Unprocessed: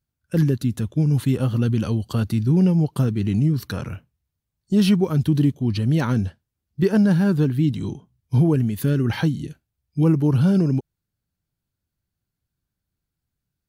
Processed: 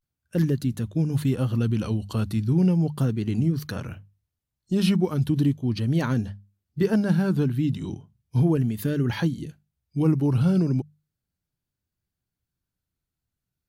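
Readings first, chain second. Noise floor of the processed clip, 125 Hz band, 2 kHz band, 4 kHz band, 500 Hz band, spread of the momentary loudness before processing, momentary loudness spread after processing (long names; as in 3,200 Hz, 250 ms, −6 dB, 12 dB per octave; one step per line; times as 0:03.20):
below −85 dBFS, −4.0 dB, −3.0 dB, −3.0 dB, −3.0 dB, 12 LU, 13 LU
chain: pitch vibrato 0.36 Hz 62 cents
mains-hum notches 50/100/150/200 Hz
level −3 dB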